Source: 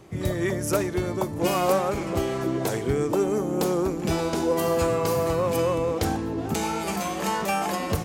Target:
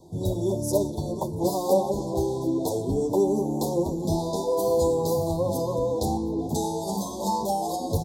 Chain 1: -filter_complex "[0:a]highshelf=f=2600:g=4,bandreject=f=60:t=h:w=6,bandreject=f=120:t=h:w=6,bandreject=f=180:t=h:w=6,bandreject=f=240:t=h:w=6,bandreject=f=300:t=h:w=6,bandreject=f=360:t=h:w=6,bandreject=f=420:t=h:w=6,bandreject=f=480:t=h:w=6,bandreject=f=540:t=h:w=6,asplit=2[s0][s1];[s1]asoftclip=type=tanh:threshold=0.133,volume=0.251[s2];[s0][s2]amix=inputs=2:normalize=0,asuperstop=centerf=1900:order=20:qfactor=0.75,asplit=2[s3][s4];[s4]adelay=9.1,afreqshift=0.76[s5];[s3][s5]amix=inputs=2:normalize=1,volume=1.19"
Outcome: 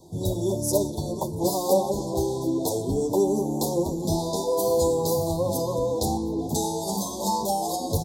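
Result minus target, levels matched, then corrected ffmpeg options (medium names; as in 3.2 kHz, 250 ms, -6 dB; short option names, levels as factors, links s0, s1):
4 kHz band +4.0 dB
-filter_complex "[0:a]highshelf=f=2600:g=-2,bandreject=f=60:t=h:w=6,bandreject=f=120:t=h:w=6,bandreject=f=180:t=h:w=6,bandreject=f=240:t=h:w=6,bandreject=f=300:t=h:w=6,bandreject=f=360:t=h:w=6,bandreject=f=420:t=h:w=6,bandreject=f=480:t=h:w=6,bandreject=f=540:t=h:w=6,asplit=2[s0][s1];[s1]asoftclip=type=tanh:threshold=0.133,volume=0.251[s2];[s0][s2]amix=inputs=2:normalize=0,asuperstop=centerf=1900:order=20:qfactor=0.75,asplit=2[s3][s4];[s4]adelay=9.1,afreqshift=0.76[s5];[s3][s5]amix=inputs=2:normalize=1,volume=1.19"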